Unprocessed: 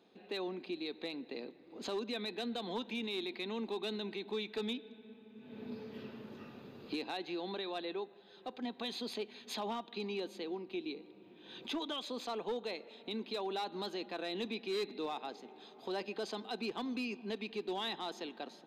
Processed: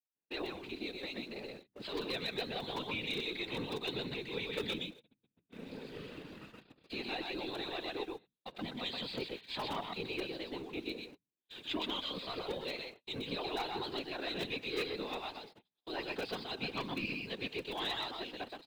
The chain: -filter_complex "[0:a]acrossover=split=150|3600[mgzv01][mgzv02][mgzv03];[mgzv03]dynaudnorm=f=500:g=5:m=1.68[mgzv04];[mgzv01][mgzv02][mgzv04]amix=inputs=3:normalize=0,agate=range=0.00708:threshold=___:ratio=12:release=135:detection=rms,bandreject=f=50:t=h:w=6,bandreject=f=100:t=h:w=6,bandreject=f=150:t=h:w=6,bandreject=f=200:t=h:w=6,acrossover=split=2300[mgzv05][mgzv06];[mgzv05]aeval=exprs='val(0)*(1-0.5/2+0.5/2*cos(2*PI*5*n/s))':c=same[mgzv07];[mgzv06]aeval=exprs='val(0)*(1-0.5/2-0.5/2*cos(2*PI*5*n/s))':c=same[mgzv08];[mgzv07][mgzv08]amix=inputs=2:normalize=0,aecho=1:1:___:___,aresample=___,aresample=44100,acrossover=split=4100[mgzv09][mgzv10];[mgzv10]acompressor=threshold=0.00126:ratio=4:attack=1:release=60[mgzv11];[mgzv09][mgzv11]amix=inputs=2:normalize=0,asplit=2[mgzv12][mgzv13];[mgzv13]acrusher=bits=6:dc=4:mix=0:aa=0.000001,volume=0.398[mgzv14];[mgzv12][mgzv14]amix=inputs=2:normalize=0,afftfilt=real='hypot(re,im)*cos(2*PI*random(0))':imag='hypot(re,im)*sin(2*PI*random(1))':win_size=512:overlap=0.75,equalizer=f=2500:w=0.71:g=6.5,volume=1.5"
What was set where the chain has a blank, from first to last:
0.00398, 125, 0.668, 11025